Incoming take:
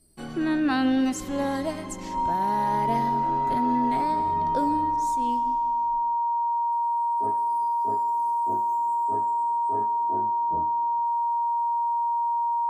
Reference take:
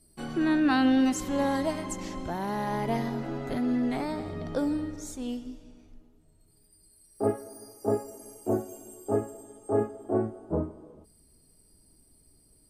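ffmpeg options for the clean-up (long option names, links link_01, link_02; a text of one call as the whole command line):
ffmpeg -i in.wav -af "bandreject=frequency=940:width=30,asetnsamples=nb_out_samples=441:pad=0,asendcmd='6.16 volume volume 10.5dB',volume=0dB" out.wav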